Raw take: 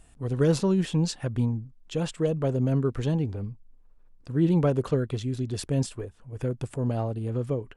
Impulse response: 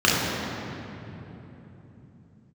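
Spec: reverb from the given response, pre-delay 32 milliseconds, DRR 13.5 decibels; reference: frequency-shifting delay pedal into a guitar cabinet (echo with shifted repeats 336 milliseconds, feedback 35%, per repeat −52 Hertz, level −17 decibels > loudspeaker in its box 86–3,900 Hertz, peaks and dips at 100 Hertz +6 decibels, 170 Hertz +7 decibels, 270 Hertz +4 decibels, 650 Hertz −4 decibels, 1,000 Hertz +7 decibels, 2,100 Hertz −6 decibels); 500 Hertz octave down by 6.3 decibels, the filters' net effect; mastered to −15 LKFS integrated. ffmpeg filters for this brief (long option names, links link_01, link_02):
-filter_complex "[0:a]equalizer=frequency=500:width_type=o:gain=-8,asplit=2[link_01][link_02];[1:a]atrim=start_sample=2205,adelay=32[link_03];[link_02][link_03]afir=irnorm=-1:irlink=0,volume=-35dB[link_04];[link_01][link_04]amix=inputs=2:normalize=0,asplit=4[link_05][link_06][link_07][link_08];[link_06]adelay=336,afreqshift=-52,volume=-17dB[link_09];[link_07]adelay=672,afreqshift=-104,volume=-26.1dB[link_10];[link_08]adelay=1008,afreqshift=-156,volume=-35.2dB[link_11];[link_05][link_09][link_10][link_11]amix=inputs=4:normalize=0,highpass=86,equalizer=frequency=100:width_type=q:width=4:gain=6,equalizer=frequency=170:width_type=q:width=4:gain=7,equalizer=frequency=270:width_type=q:width=4:gain=4,equalizer=frequency=650:width_type=q:width=4:gain=-4,equalizer=frequency=1000:width_type=q:width=4:gain=7,equalizer=frequency=2100:width_type=q:width=4:gain=-6,lowpass=frequency=3900:width=0.5412,lowpass=frequency=3900:width=1.3066,volume=9.5dB"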